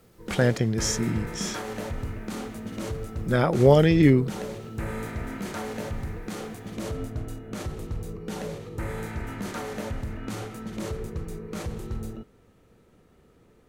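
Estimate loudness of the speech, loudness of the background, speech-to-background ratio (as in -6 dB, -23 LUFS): -22.5 LUFS, -35.0 LUFS, 12.5 dB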